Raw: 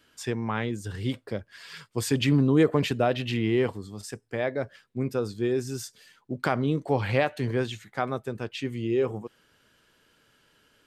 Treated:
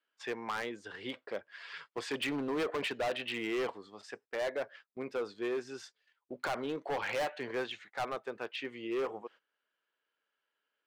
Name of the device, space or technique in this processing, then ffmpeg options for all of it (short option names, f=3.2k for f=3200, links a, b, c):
walkie-talkie: -af "highpass=550,lowpass=3k,asoftclip=type=hard:threshold=-30dB,agate=range=-19dB:threshold=-54dB:ratio=16:detection=peak"